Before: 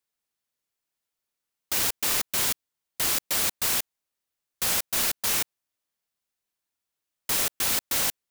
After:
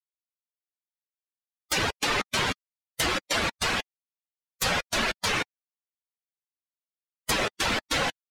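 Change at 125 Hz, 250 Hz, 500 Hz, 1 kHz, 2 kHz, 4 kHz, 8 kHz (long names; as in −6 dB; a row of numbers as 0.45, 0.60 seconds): +7.5, +7.0, +7.0, +6.5, +6.0, +1.5, −7.0 decibels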